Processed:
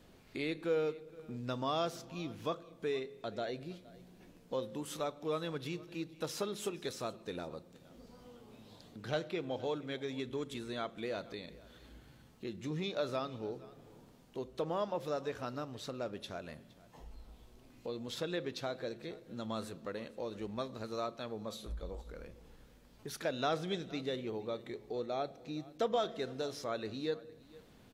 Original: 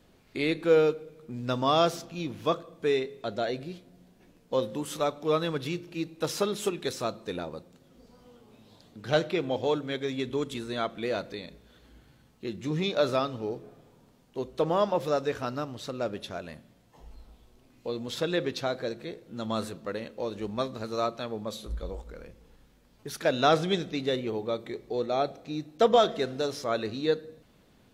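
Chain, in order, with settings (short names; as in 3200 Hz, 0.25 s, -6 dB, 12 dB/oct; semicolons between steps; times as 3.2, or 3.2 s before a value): compressor 1.5:1, threshold -51 dBFS, peak gain reduction 12 dB; on a send: echo 0.466 s -21 dB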